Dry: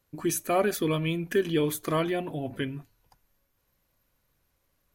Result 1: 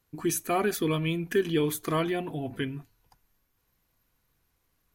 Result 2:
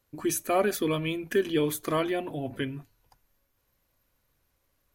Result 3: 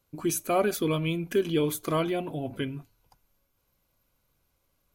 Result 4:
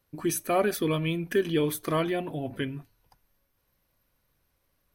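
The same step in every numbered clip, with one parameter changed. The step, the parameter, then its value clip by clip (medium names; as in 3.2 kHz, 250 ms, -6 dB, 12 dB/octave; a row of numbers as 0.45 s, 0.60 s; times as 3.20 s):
band-stop, frequency: 570 Hz, 170 Hz, 1.8 kHz, 7 kHz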